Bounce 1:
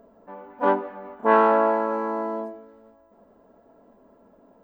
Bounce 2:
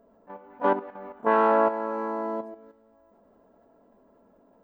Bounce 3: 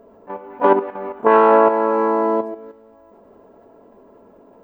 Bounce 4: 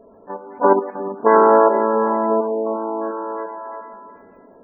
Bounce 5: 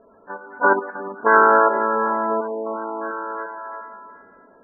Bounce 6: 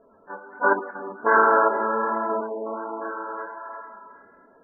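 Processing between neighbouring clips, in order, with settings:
level quantiser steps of 10 dB
fifteen-band EQ 100 Hz +6 dB, 400 Hz +8 dB, 1000 Hz +4 dB, 2500 Hz +5 dB; limiter -10.5 dBFS, peak gain reduction 5.5 dB; gain +8 dB
delay with a stepping band-pass 0.35 s, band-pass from 180 Hz, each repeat 0.7 oct, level -4 dB; spectral gate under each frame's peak -25 dB strong
synth low-pass 1500 Hz, resonance Q 12; gain -6.5 dB
flange 1.3 Hz, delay 6 ms, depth 8.7 ms, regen -37%

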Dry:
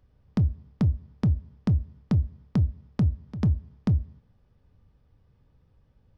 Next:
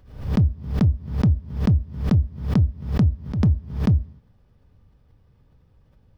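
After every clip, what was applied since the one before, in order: backwards sustainer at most 100 dB/s; gain +4.5 dB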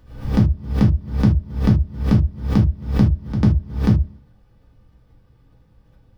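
non-linear reverb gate 0.1 s falling, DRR -1 dB; gain +1 dB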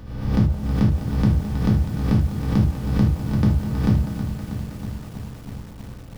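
per-bin compression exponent 0.6; delay with a stepping band-pass 0.17 s, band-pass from 720 Hz, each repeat 0.7 oct, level -11 dB; lo-fi delay 0.32 s, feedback 80%, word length 6-bit, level -9.5 dB; gain -4.5 dB

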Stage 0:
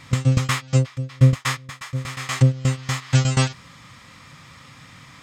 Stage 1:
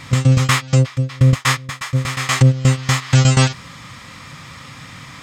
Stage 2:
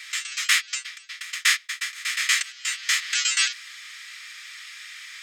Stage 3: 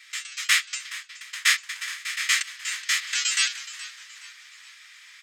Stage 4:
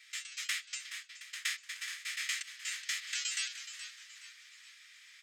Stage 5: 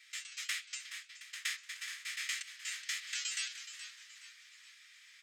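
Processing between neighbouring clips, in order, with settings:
limiter -12 dBFS, peak gain reduction 9 dB; gain +8.5 dB
steep high-pass 1600 Hz 36 dB/oct
frequency-shifting echo 0.422 s, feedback 53%, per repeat -74 Hz, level -12 dB; three-band expander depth 40%; gain -3 dB
HPF 1500 Hz 12 dB/oct; compressor 6:1, threshold -25 dBFS, peak gain reduction 9.5 dB; gain -7.5 dB
flange 1.6 Hz, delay 8.8 ms, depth 5.9 ms, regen -89%; gain +2.5 dB

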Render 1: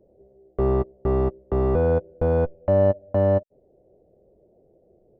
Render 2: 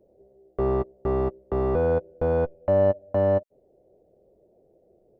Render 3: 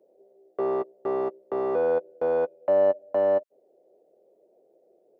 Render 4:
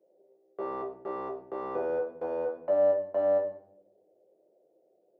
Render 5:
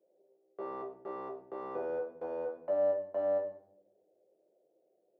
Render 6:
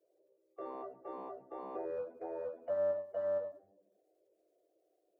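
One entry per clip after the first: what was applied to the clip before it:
low shelf 270 Hz -6 dB
Chebyshev high-pass 420 Hz, order 2
shoebox room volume 110 m³, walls mixed, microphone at 0.84 m; gain -8.5 dB
bell 61 Hz -7 dB 0.43 oct; gain -5.5 dB
bin magnitudes rounded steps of 30 dB; gain -3 dB

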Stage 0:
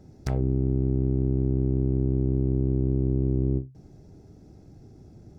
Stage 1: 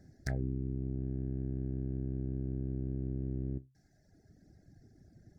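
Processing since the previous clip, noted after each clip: reverb removal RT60 1.3 s; EQ curve 270 Hz 0 dB, 450 Hz -5 dB, 680 Hz +2 dB, 1100 Hz -18 dB, 1700 Hz +15 dB, 2800 Hz -12 dB, 4300 Hz +3 dB; gain -7.5 dB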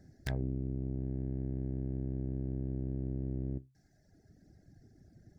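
self-modulated delay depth 0.24 ms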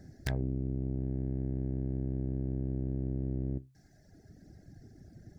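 compressor 1.5:1, threshold -42 dBFS, peak gain reduction 5 dB; gain +6.5 dB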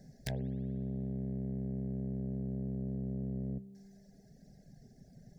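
fixed phaser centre 320 Hz, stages 6; spring tank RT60 2.5 s, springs 56 ms, chirp 60 ms, DRR 17.5 dB

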